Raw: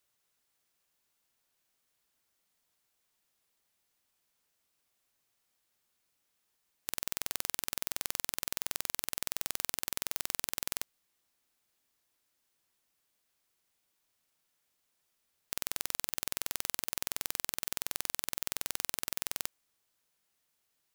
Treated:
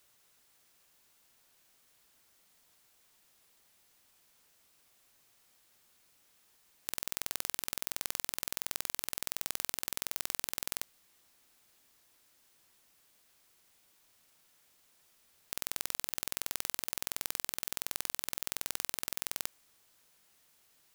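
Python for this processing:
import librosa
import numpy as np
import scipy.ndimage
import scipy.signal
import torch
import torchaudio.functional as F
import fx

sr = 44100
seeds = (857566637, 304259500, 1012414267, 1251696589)

y = fx.over_compress(x, sr, threshold_db=-40.0, ratio=-0.5)
y = y * 10.0 ** (5.0 / 20.0)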